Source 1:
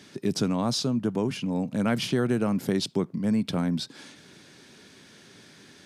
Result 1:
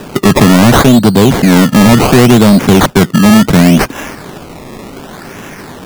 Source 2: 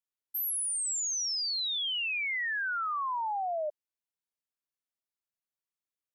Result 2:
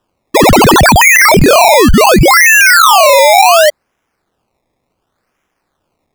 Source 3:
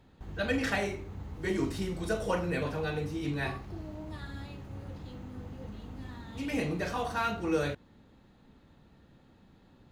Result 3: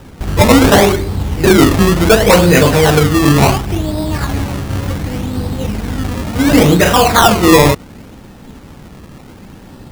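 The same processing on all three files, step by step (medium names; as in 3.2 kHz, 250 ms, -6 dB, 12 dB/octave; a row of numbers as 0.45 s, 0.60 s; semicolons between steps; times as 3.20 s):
decimation with a swept rate 20×, swing 100% 0.69 Hz; overload inside the chain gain 26 dB; peak normalisation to -2 dBFS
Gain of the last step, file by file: +24.0 dB, +27.0 dB, +24.0 dB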